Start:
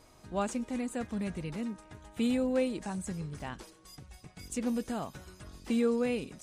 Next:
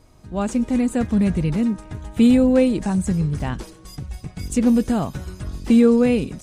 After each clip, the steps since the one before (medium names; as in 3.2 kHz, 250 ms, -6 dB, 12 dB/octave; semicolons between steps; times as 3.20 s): bass shelf 280 Hz +11.5 dB; level rider gain up to 9.5 dB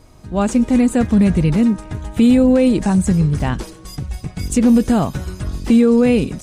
peak limiter -11 dBFS, peak gain reduction 6 dB; trim +6 dB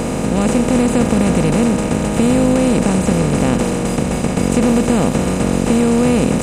spectral levelling over time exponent 0.2; endings held to a fixed fall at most 150 dB/s; trim -6 dB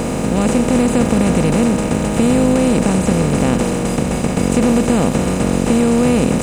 bit crusher 8-bit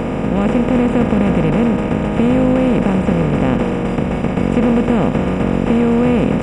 Savitzky-Golay filter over 25 samples